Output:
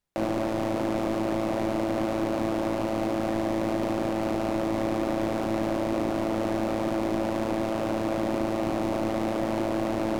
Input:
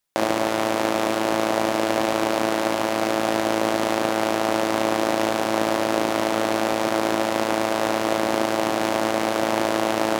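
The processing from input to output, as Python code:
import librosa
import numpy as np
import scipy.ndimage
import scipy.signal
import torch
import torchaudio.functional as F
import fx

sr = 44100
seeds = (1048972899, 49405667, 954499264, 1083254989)

y = fx.tilt_eq(x, sr, slope=-2.0)
y = 10.0 ** (-18.5 / 20.0) * np.tanh(y / 10.0 ** (-18.5 / 20.0))
y = fx.low_shelf(y, sr, hz=300.0, db=4.5)
y = y * librosa.db_to_amplitude(-3.5)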